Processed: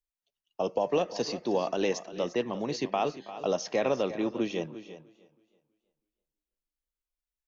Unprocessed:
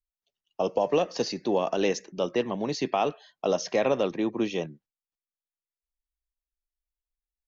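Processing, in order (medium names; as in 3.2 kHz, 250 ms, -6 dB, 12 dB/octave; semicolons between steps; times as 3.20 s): on a send: delay 350 ms -14 dB; on the sum: modulated delay 324 ms, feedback 32%, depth 51 cents, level -20.5 dB; trim -3 dB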